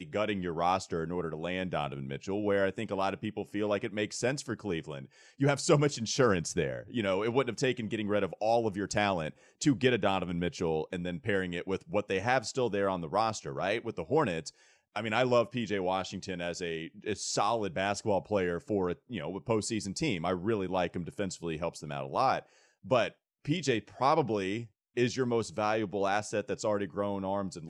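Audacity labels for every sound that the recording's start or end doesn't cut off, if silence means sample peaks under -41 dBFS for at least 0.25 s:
5.400000	9.300000	sound
9.610000	14.490000	sound
14.960000	22.400000	sound
22.850000	23.080000	sound
23.450000	24.650000	sound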